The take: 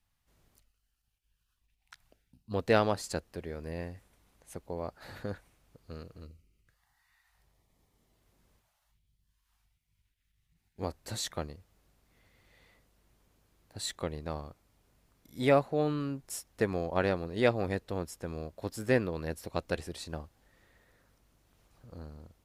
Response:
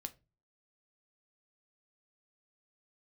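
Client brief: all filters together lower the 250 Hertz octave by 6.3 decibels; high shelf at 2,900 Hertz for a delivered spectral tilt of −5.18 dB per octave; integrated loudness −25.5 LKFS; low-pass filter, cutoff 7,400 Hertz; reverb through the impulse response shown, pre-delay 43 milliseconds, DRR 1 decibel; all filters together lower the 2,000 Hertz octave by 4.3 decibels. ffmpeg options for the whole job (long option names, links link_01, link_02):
-filter_complex "[0:a]lowpass=7400,equalizer=frequency=250:width_type=o:gain=-8.5,equalizer=frequency=2000:width_type=o:gain=-4,highshelf=frequency=2900:gain=-3.5,asplit=2[link_01][link_02];[1:a]atrim=start_sample=2205,adelay=43[link_03];[link_02][link_03]afir=irnorm=-1:irlink=0,volume=2.5dB[link_04];[link_01][link_04]amix=inputs=2:normalize=0,volume=8dB"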